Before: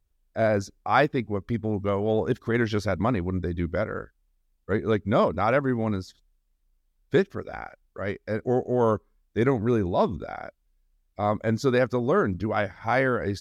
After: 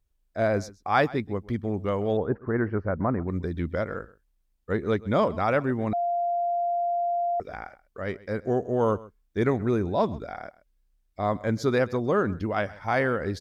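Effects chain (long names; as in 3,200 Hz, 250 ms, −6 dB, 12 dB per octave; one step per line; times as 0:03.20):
0:02.17–0:03.28: inverse Chebyshev low-pass filter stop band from 3,300 Hz, stop band 40 dB
single-tap delay 130 ms −20.5 dB
0:05.93–0:07.40: beep over 695 Hz −21.5 dBFS
level −1.5 dB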